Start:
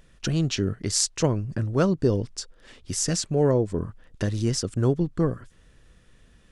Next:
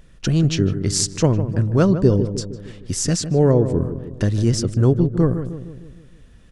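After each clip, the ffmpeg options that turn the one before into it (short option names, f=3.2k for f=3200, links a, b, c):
-filter_complex "[0:a]lowshelf=f=350:g=5.5,asplit=2[a][b];[b]adelay=154,lowpass=f=1.1k:p=1,volume=-9.5dB,asplit=2[c][d];[d]adelay=154,lowpass=f=1.1k:p=1,volume=0.55,asplit=2[e][f];[f]adelay=154,lowpass=f=1.1k:p=1,volume=0.55,asplit=2[g][h];[h]adelay=154,lowpass=f=1.1k:p=1,volume=0.55,asplit=2[i][j];[j]adelay=154,lowpass=f=1.1k:p=1,volume=0.55,asplit=2[k][l];[l]adelay=154,lowpass=f=1.1k:p=1,volume=0.55[m];[a][c][e][g][i][k][m]amix=inputs=7:normalize=0,volume=2.5dB"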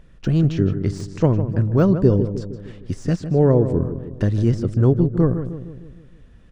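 -af "deesser=0.75,highshelf=f=3.8k:g=-11.5"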